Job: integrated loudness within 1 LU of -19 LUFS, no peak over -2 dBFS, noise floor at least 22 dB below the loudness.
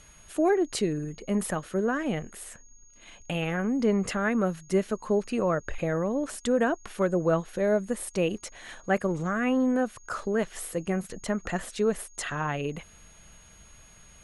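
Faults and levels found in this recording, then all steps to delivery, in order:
steady tone 6.6 kHz; tone level -55 dBFS; loudness -28.5 LUFS; peak level -12.0 dBFS; loudness target -19.0 LUFS
-> band-stop 6.6 kHz, Q 30; trim +9.5 dB

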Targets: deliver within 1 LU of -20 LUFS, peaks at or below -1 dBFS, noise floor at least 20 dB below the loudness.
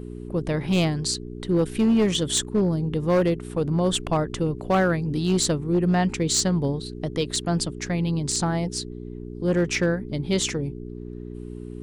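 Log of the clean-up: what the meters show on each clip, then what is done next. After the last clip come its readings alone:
clipped samples 1.5%; clipping level -15.0 dBFS; hum 60 Hz; highest harmonic 420 Hz; hum level -32 dBFS; loudness -24.0 LUFS; peak level -15.0 dBFS; loudness target -20.0 LUFS
-> clip repair -15 dBFS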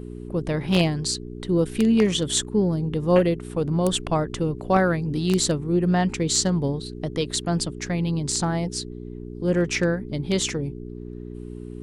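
clipped samples 0.0%; hum 60 Hz; highest harmonic 420 Hz; hum level -32 dBFS
-> de-hum 60 Hz, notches 7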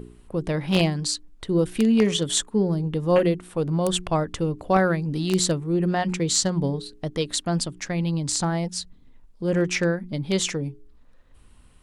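hum not found; loudness -24.0 LUFS; peak level -5.5 dBFS; loudness target -20.0 LUFS
-> trim +4 dB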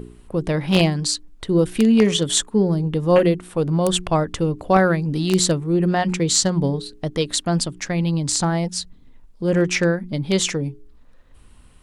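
loudness -20.0 LUFS; peak level -1.5 dBFS; noise floor -48 dBFS

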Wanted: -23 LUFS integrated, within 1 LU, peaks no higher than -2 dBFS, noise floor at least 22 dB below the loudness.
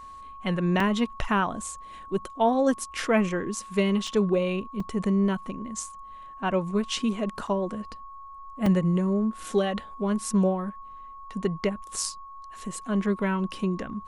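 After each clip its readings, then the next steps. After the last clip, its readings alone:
dropouts 5; longest dropout 3.3 ms; steady tone 1.1 kHz; tone level -41 dBFS; loudness -27.0 LUFS; peak level -11.0 dBFS; loudness target -23.0 LUFS
-> interpolate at 0.80/4.07/4.80/7.47/8.66 s, 3.3 ms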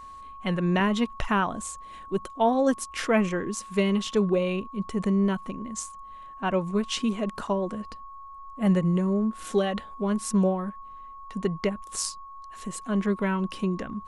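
dropouts 0; steady tone 1.1 kHz; tone level -41 dBFS
-> band-stop 1.1 kHz, Q 30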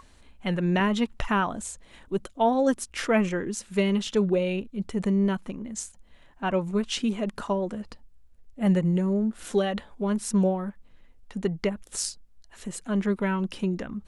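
steady tone not found; loudness -27.0 LUFS; peak level -10.5 dBFS; loudness target -23.0 LUFS
-> trim +4 dB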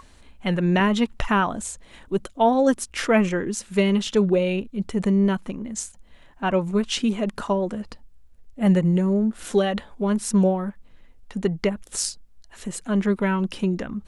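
loudness -23.0 LUFS; peak level -6.5 dBFS; noise floor -51 dBFS

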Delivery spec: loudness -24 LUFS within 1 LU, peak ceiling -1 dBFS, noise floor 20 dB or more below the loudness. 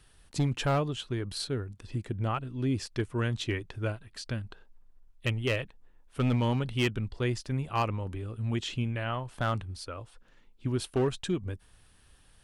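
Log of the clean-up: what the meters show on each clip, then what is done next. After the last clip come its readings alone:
clipped samples 0.6%; clipping level -21.0 dBFS; loudness -32.0 LUFS; peak level -21.0 dBFS; loudness target -24.0 LUFS
-> clip repair -21 dBFS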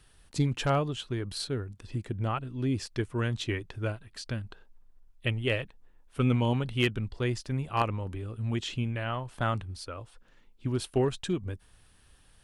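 clipped samples 0.0%; loudness -31.5 LUFS; peak level -12.0 dBFS; loudness target -24.0 LUFS
-> trim +7.5 dB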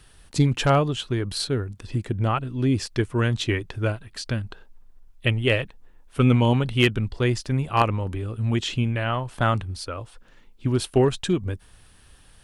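loudness -24.0 LUFS; peak level -4.5 dBFS; noise floor -53 dBFS

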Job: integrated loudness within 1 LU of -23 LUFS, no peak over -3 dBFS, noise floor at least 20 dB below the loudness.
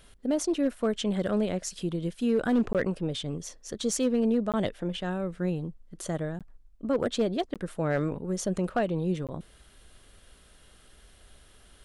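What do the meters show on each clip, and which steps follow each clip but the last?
clipped samples 0.3%; clipping level -18.5 dBFS; dropouts 5; longest dropout 17 ms; loudness -29.5 LUFS; peak level -18.5 dBFS; loudness target -23.0 LUFS
-> clip repair -18.5 dBFS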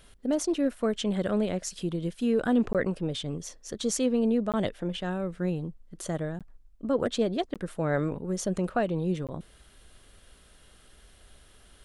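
clipped samples 0.0%; dropouts 5; longest dropout 17 ms
-> interpolate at 2.73/4.52/6.39/7.54/9.27 s, 17 ms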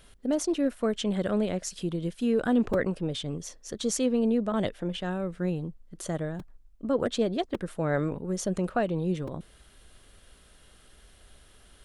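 dropouts 0; loudness -29.5 LUFS; peak level -13.5 dBFS; loudness target -23.0 LUFS
-> trim +6.5 dB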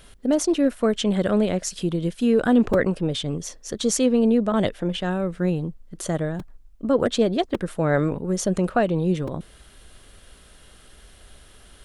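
loudness -23.0 LUFS; peak level -7.0 dBFS; noise floor -50 dBFS

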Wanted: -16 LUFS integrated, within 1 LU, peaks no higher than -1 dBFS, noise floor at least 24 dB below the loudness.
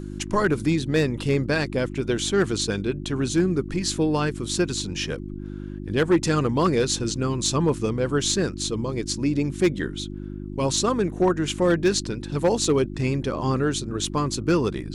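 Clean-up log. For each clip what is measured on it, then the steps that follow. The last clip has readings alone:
clipped samples 0.3%; clipping level -12.5 dBFS; hum 50 Hz; highest harmonic 350 Hz; hum level -32 dBFS; loudness -24.0 LUFS; peak level -12.5 dBFS; loudness target -16.0 LUFS
-> clip repair -12.5 dBFS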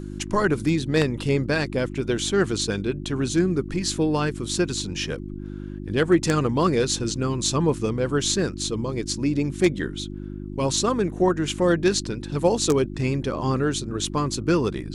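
clipped samples 0.0%; hum 50 Hz; highest harmonic 350 Hz; hum level -31 dBFS
-> de-hum 50 Hz, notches 7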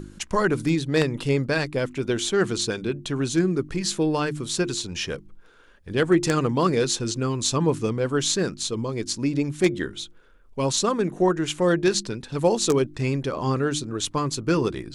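hum not found; loudness -24.0 LUFS; peak level -4.0 dBFS; loudness target -16.0 LUFS
-> trim +8 dB; peak limiter -1 dBFS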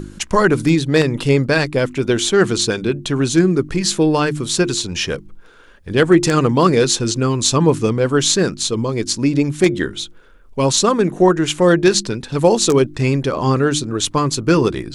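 loudness -16.5 LUFS; peak level -1.0 dBFS; noise floor -43 dBFS

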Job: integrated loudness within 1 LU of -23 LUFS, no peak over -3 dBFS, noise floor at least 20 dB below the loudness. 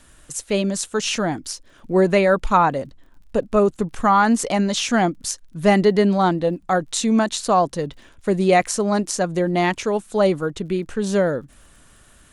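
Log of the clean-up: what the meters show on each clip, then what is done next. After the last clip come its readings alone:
tick rate 37 per s; loudness -20.0 LUFS; peak level -2.5 dBFS; loudness target -23.0 LUFS
-> de-click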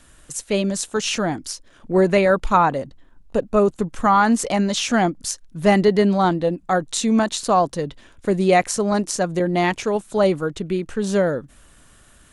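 tick rate 0 per s; loudness -20.0 LUFS; peak level -2.5 dBFS; loudness target -23.0 LUFS
-> trim -3 dB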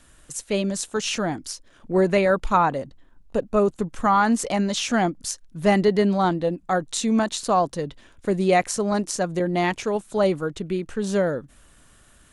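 loudness -23.0 LUFS; peak level -5.5 dBFS; noise floor -54 dBFS

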